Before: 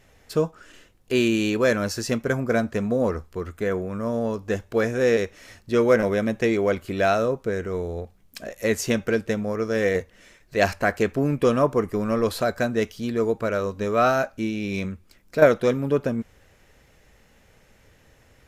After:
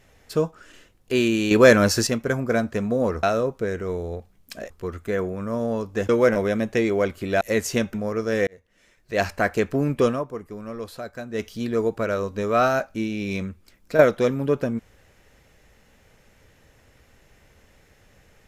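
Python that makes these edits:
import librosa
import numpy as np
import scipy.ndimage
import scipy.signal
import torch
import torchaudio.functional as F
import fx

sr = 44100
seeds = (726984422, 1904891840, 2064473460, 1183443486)

y = fx.edit(x, sr, fx.clip_gain(start_s=1.51, length_s=0.56, db=7.5),
    fx.cut(start_s=4.62, length_s=1.14),
    fx.move(start_s=7.08, length_s=1.47, to_s=3.23),
    fx.cut(start_s=9.08, length_s=0.29),
    fx.fade_in_span(start_s=9.9, length_s=0.96),
    fx.fade_down_up(start_s=11.5, length_s=1.38, db=-11.0, fade_s=0.22, curve='qua'), tone=tone)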